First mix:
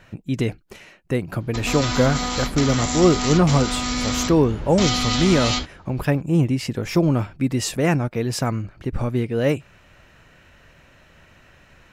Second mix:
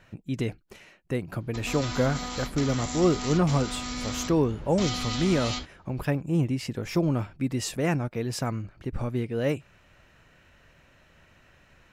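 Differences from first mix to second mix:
speech -6.5 dB; background -9.5 dB

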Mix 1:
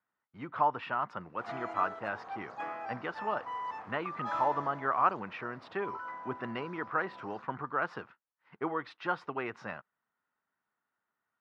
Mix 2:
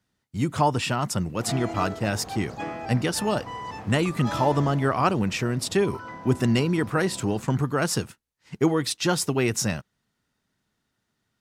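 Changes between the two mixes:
speech: remove distance through air 310 m; master: remove band-pass filter 1.2 kHz, Q 1.6

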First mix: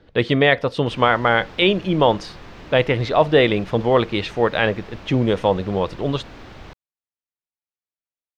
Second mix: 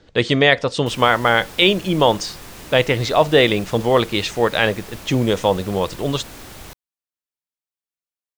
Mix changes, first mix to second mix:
speech: add steep low-pass 7.3 kHz 36 dB/octave; master: remove distance through air 220 m

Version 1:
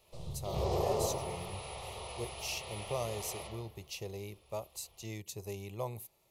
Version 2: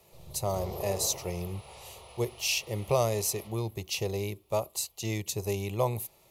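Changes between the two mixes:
speech +10.5 dB; background -6.5 dB

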